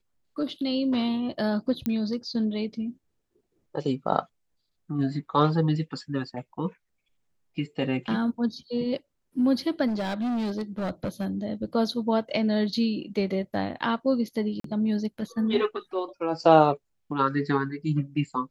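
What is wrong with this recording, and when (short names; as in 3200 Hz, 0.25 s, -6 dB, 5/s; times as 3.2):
1.86 pop -15 dBFS
9.87–11.27 clipped -25 dBFS
14.6–14.64 gap 43 ms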